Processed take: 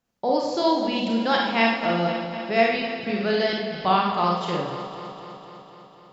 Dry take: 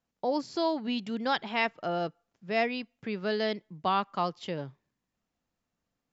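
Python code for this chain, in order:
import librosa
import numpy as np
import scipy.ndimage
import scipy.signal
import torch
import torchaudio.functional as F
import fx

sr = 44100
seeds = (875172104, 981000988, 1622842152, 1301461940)

y = fx.reverse_delay_fb(x, sr, ms=125, feedback_pct=82, wet_db=-11)
y = fx.rev_schroeder(y, sr, rt60_s=0.53, comb_ms=31, drr_db=-0.5)
y = F.gain(torch.from_numpy(y), 4.5).numpy()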